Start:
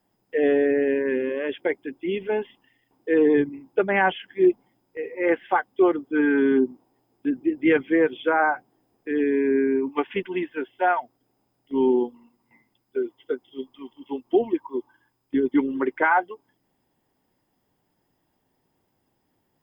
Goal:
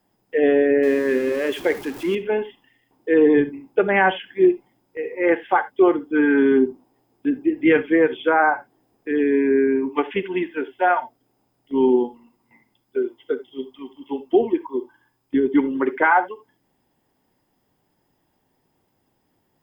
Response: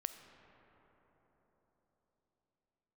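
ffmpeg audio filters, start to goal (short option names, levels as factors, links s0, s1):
-filter_complex "[0:a]asettb=1/sr,asplit=3[s0][s1][s2];[s0]atrim=end=0.834[s3];[s1]atrim=start=0.83:end=2.15,asetpts=PTS-STARTPTS,afade=t=in:d=0.004:c=qsin,afade=t=out:st=1.316:d=0.004:c=qsin,aeval=exprs='val(0)+0.5*0.0178*sgn(val(0))':c=same[s4];[s2]atrim=start=2.146[s5];[s3][s4]acrossfade=d=0.004:c1=hsin:c2=qsin[s6];[s6][s5]acrossfade=d=0.004:c1=qsin:c2=hsin[s7];[1:a]atrim=start_sample=2205,afade=t=out:st=0.16:d=0.01,atrim=end_sample=7497,asetrate=57330,aresample=44100[s8];[s7][s8]afir=irnorm=-1:irlink=0,volume=2.51"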